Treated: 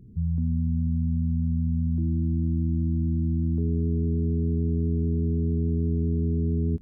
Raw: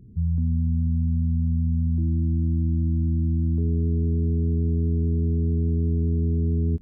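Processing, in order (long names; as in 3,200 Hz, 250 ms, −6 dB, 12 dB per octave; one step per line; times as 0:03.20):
parametric band 78 Hz −3.5 dB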